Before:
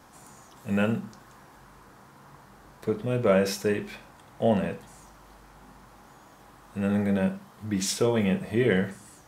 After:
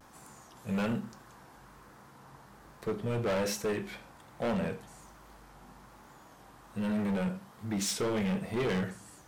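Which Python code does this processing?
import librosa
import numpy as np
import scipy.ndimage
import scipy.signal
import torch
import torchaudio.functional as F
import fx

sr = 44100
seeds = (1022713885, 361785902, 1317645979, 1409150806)

y = fx.vibrato(x, sr, rate_hz=1.2, depth_cents=69.0)
y = np.clip(y, -10.0 ** (-25.0 / 20.0), 10.0 ** (-25.0 / 20.0))
y = y * librosa.db_to_amplitude(-2.5)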